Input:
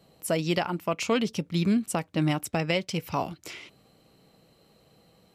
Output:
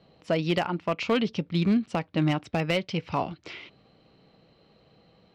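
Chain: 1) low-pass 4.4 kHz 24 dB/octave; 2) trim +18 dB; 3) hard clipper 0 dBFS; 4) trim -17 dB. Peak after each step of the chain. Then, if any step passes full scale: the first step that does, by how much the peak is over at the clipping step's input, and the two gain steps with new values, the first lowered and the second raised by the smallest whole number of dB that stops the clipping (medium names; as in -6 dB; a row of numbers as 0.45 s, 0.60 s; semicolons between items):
-12.5 dBFS, +5.5 dBFS, 0.0 dBFS, -17.0 dBFS; step 2, 5.5 dB; step 2 +12 dB, step 4 -11 dB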